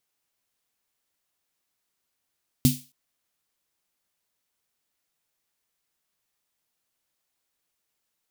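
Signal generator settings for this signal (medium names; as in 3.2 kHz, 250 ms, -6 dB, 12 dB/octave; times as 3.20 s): snare drum length 0.27 s, tones 140 Hz, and 250 Hz, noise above 2.9 kHz, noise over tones -8 dB, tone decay 0.24 s, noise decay 0.35 s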